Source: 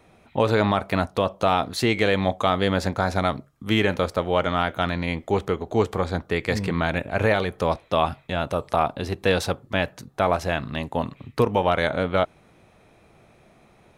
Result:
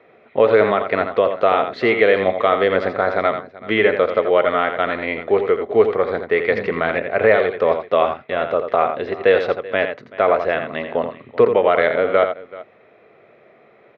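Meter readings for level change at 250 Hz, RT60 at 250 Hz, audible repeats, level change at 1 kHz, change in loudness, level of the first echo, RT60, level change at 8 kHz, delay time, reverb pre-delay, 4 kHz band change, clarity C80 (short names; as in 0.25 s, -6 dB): -0.5 dB, none, 2, +4.0 dB, +5.5 dB, -8.0 dB, none, under -20 dB, 84 ms, none, -2.0 dB, none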